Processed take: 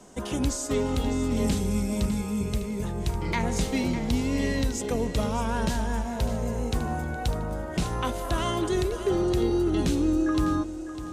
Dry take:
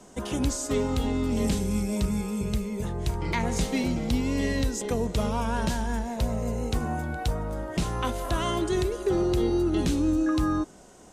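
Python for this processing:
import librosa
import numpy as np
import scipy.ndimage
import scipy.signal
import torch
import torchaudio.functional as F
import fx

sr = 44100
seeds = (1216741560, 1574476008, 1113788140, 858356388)

y = fx.echo_feedback(x, sr, ms=603, feedback_pct=29, wet_db=-12)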